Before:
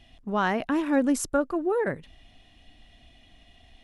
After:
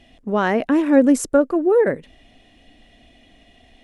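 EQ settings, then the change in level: ten-band graphic EQ 250 Hz +7 dB, 500 Hz +10 dB, 2 kHz +5 dB, 8 kHz +5 dB; 0.0 dB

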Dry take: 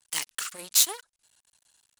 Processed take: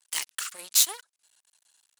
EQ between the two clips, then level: high-pass 670 Hz 6 dB/octave; 0.0 dB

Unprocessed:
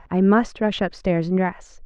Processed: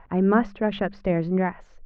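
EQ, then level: low-pass 2.6 kHz 12 dB/octave; hum notches 50/100/150/200 Hz; -2.5 dB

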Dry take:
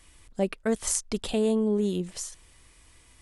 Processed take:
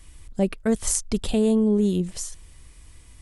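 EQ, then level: bass shelf 220 Hz +12 dB; treble shelf 5.4 kHz +4.5 dB; 0.0 dB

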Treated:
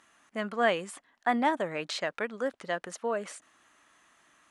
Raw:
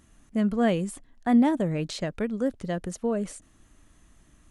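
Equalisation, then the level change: band-pass filter 1.2 kHz, Q 0.84; tilt EQ +2.5 dB/octave; +5.5 dB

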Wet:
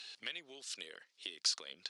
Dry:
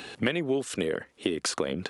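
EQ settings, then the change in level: band-pass filter 4.8 kHz, Q 2.5; +1.0 dB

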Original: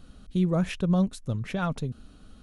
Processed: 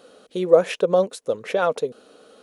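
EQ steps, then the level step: resonant high-pass 480 Hz, resonance Q 4.9; +6.0 dB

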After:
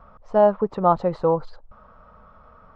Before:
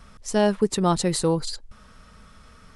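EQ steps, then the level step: distance through air 100 m; tape spacing loss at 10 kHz 35 dB; high-order bell 830 Hz +13 dB; -3.0 dB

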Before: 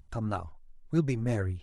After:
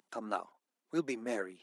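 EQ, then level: Bessel high-pass 380 Hz, order 8; 0.0 dB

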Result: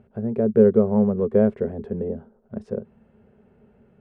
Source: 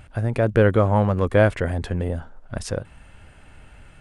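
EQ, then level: two resonant band-passes 300 Hz, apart 0.87 oct; +8.0 dB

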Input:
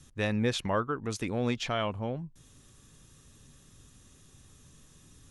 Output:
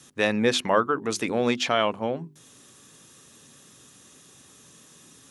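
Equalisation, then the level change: high-pass 230 Hz 12 dB/octave; hum notches 50/100/150/200/250/300/350/400 Hz; +8.5 dB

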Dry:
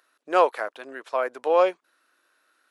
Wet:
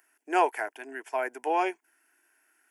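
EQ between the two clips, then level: treble shelf 4 kHz +8 dB; static phaser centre 800 Hz, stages 8; 0.0 dB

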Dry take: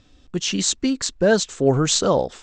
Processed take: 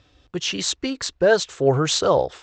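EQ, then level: high-pass 63 Hz; distance through air 95 m; peaking EQ 220 Hz -14.5 dB 0.68 oct; +2.5 dB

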